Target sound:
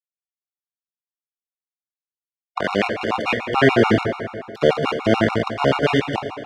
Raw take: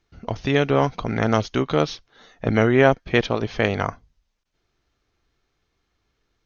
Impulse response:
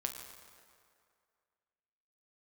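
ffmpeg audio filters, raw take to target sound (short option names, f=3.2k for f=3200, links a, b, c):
-filter_complex "[0:a]areverse,asplit=2[a][b];[b]acompressor=threshold=-27dB:ratio=4,volume=0dB[c];[a][c]amix=inputs=2:normalize=0,aeval=exprs='val(0)+0.0251*sin(2*PI*2800*n/s)':c=same,aeval=exprs='val(0)*gte(abs(val(0)),0.141)':c=same,highpass=100,lowpass=3.7k[d];[1:a]atrim=start_sample=2205[e];[d][e]afir=irnorm=-1:irlink=0,afftfilt=real='re*gt(sin(2*PI*6.9*pts/sr)*(1-2*mod(floor(b*sr/1024/720),2)),0)':imag='im*gt(sin(2*PI*6.9*pts/sr)*(1-2*mod(floor(b*sr/1024/720),2)),0)':win_size=1024:overlap=0.75,volume=3.5dB"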